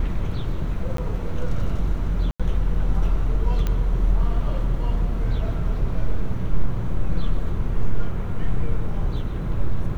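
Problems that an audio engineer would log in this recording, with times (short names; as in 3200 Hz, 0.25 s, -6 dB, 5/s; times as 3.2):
0.97–0.98 gap 13 ms
2.31–2.4 gap 86 ms
3.67 pop -12 dBFS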